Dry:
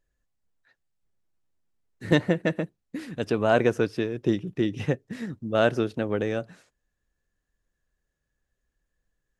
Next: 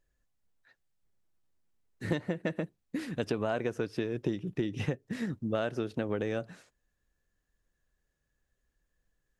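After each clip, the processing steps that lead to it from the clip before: compression 12:1, threshold -27 dBFS, peak gain reduction 14 dB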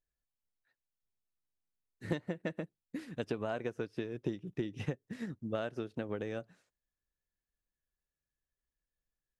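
upward expansion 1.5:1, over -49 dBFS; trim -3 dB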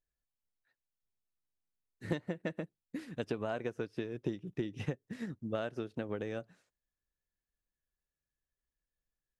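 no audible change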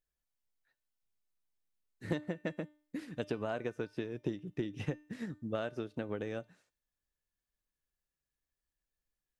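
feedback comb 300 Hz, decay 0.46 s, harmonics all, mix 50%; trim +5.5 dB

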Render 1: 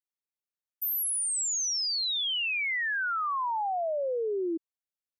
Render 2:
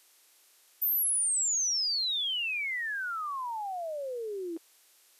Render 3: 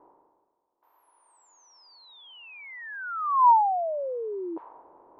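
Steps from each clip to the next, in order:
spectral levelling over time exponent 0.6; treble shelf 2.8 kHz +9 dB; trim -7.5 dB
level-controlled noise filter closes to 320 Hz, open at -29.5 dBFS; reverse; upward compressor, threshold -42 dBFS; reverse; resonant low-pass 960 Hz, resonance Q 8.6; trim +2 dB

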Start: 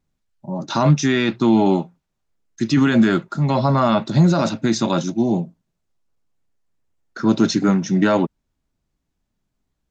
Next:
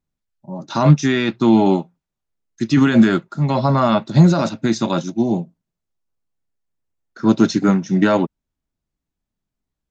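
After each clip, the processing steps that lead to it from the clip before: upward expansion 1.5:1, over -32 dBFS; trim +4 dB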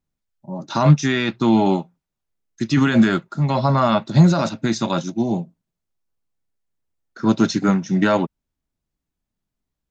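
dynamic bell 320 Hz, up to -4 dB, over -24 dBFS, Q 0.98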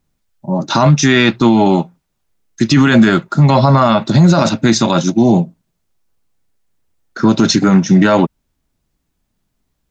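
loudness maximiser +14 dB; trim -1 dB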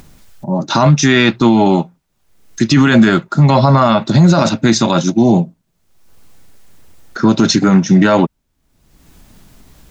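upward compressor, threshold -22 dBFS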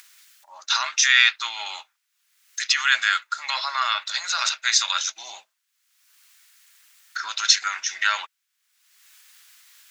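high-pass 1.5 kHz 24 dB/octave

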